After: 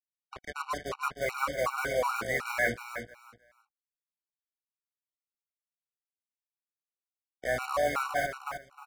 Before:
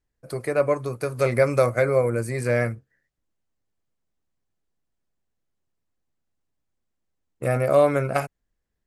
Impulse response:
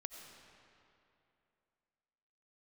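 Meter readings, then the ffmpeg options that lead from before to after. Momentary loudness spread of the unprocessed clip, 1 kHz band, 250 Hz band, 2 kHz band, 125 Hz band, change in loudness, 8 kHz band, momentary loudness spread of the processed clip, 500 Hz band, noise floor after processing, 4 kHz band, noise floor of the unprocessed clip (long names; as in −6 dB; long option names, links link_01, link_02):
12 LU, −2.5 dB, −14.0 dB, −1.0 dB, −20.5 dB, −9.0 dB, −2.5 dB, 12 LU, −12.0 dB, below −85 dBFS, +2.0 dB, −79 dBFS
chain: -filter_complex "[0:a]bandreject=frequency=60:width_type=h:width=6,bandreject=frequency=120:width_type=h:width=6,bandreject=frequency=180:width_type=h:width=6,bandreject=frequency=240:width_type=h:width=6,bandreject=frequency=300:width_type=h:width=6,bandreject=frequency=360:width_type=h:width=6,bandreject=frequency=420:width_type=h:width=6,bandreject=frequency=480:width_type=h:width=6,bandreject=frequency=540:width_type=h:width=6,agate=range=-33dB:threshold=-33dB:ratio=3:detection=peak,lowshelf=frequency=620:width_type=q:width=1.5:gain=-12,areverse,acompressor=threshold=-35dB:ratio=10,areverse,acrossover=split=200 3000:gain=0.178 1 0.0708[link_01][link_02][link_03];[link_01][link_02][link_03]amix=inputs=3:normalize=0,dynaudnorm=framelen=240:gausssize=7:maxgain=9dB,aeval=exprs='val(0)+0.00355*(sin(2*PI*60*n/s)+sin(2*PI*2*60*n/s)/2+sin(2*PI*3*60*n/s)/3+sin(2*PI*4*60*n/s)/4+sin(2*PI*5*60*n/s)/5)':channel_layout=same,acrusher=bits=5:mix=0:aa=0.5,asplit=2[link_04][link_05];[link_05]aecho=0:1:310|620|930:0.398|0.0836|0.0176[link_06];[link_04][link_06]amix=inputs=2:normalize=0,afftfilt=real='re*gt(sin(2*PI*2.7*pts/sr)*(1-2*mod(floor(b*sr/1024/750),2)),0)':imag='im*gt(sin(2*PI*2.7*pts/sr)*(1-2*mod(floor(b*sr/1024/750),2)),0)':win_size=1024:overlap=0.75,volume=3.5dB"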